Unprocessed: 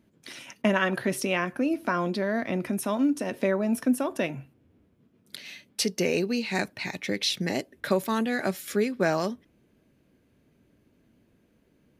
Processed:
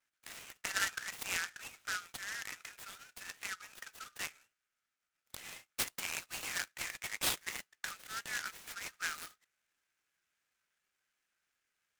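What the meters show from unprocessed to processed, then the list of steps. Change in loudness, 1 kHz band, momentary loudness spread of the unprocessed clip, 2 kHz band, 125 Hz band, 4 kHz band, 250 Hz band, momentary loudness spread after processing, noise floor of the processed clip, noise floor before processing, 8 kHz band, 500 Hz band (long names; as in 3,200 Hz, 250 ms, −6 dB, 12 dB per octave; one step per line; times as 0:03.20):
−12.0 dB, −14.0 dB, 13 LU, −7.0 dB, −25.0 dB, −7.5 dB, −32.5 dB, 14 LU, below −85 dBFS, −66 dBFS, −2.5 dB, −28.5 dB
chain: pitch vibrato 2.7 Hz 69 cents
linear-phase brick-wall band-pass 1,200–7,200 Hz
short delay modulated by noise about 4,100 Hz, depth 0.061 ms
level −5.5 dB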